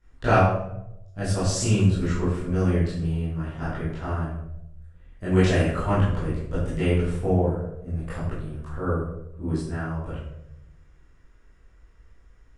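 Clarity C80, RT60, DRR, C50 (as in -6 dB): 4.5 dB, 0.85 s, -12.0 dB, 1.0 dB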